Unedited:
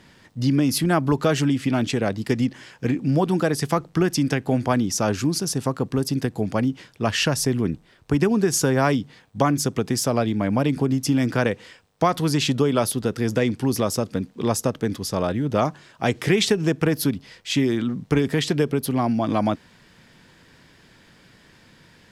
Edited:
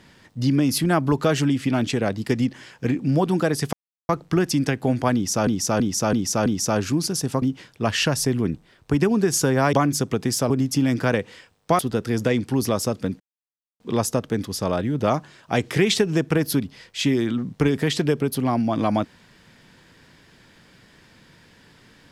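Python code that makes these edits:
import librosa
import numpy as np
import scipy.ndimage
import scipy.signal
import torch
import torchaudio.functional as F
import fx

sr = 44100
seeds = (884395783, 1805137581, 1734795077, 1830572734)

y = fx.edit(x, sr, fx.insert_silence(at_s=3.73, length_s=0.36),
    fx.repeat(start_s=4.78, length_s=0.33, count=5),
    fx.cut(start_s=5.74, length_s=0.88),
    fx.cut(start_s=8.93, length_s=0.45),
    fx.cut(start_s=10.15, length_s=0.67),
    fx.cut(start_s=12.11, length_s=0.79),
    fx.insert_silence(at_s=14.31, length_s=0.6), tone=tone)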